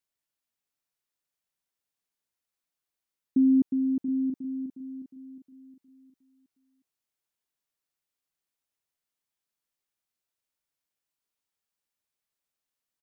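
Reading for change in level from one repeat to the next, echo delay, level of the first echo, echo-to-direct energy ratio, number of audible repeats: no regular repeats, 681 ms, -10.0 dB, -10.0 dB, 1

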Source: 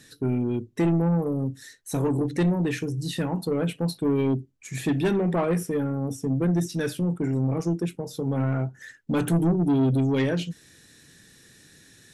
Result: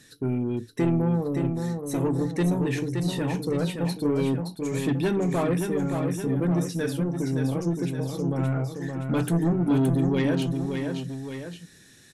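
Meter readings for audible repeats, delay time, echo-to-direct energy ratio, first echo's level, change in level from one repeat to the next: 2, 570 ms, -4.5 dB, -5.5 dB, -5.0 dB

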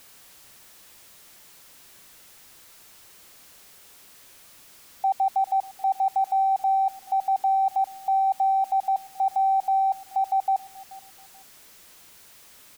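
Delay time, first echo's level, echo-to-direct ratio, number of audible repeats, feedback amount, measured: 431 ms, -20.5 dB, -20.0 dB, 2, 26%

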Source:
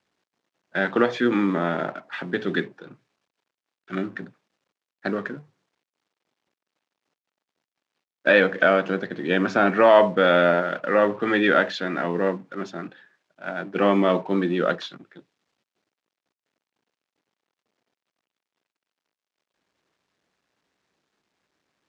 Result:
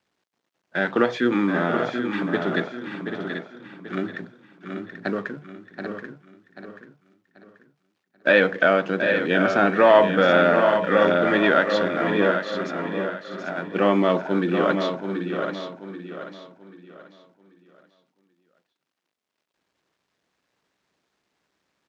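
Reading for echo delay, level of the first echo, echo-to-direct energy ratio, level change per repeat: 729 ms, -7.5 dB, -4.0 dB, no regular repeats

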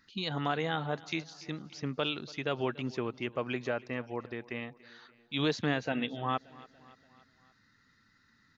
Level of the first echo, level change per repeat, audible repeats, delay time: -21.5 dB, -5.0 dB, 3, 287 ms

